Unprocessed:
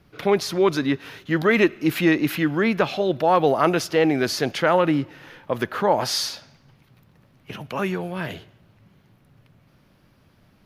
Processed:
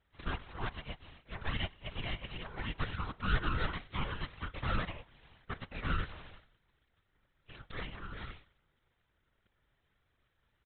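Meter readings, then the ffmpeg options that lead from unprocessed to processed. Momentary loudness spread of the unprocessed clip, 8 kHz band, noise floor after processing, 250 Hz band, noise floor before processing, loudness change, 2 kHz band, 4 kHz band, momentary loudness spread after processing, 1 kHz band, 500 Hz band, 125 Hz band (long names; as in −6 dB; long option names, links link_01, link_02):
12 LU, below −40 dB, −78 dBFS, −23.0 dB, −59 dBFS, −18.0 dB, −14.5 dB, −14.5 dB, 15 LU, −18.0 dB, −27.5 dB, −10.0 dB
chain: -filter_complex "[0:a]asplit=3[link_01][link_02][link_03];[link_01]bandpass=frequency=730:width_type=q:width=8,volume=0dB[link_04];[link_02]bandpass=frequency=1090:width_type=q:width=8,volume=-6dB[link_05];[link_03]bandpass=frequency=2440:width_type=q:width=8,volume=-9dB[link_06];[link_04][link_05][link_06]amix=inputs=3:normalize=0,acrossover=split=650[link_07][link_08];[link_08]asoftclip=type=hard:threshold=-33dB[link_09];[link_07][link_09]amix=inputs=2:normalize=0,crystalizer=i=6:c=0,aresample=8000,aeval=exprs='abs(val(0))':channel_layout=same,aresample=44100,aemphasis=mode=reproduction:type=50fm,afftfilt=real='hypot(re,im)*cos(2*PI*random(0))':imag='hypot(re,im)*sin(2*PI*random(1))':win_size=512:overlap=0.75,volume=3dB"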